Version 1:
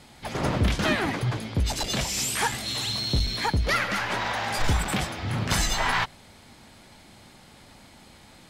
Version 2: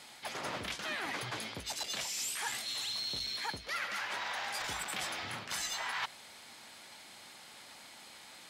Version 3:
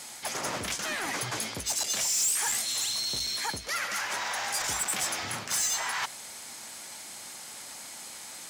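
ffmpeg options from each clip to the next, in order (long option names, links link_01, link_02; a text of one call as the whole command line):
ffmpeg -i in.wav -af "highpass=frequency=1200:poles=1,areverse,acompressor=threshold=-38dB:ratio=5,areverse,volume=2dB" out.wav
ffmpeg -i in.wav -af "highshelf=frequency=5000:width_type=q:width=1.5:gain=7.5,asoftclip=type=tanh:threshold=-28.5dB,volume=6.5dB" out.wav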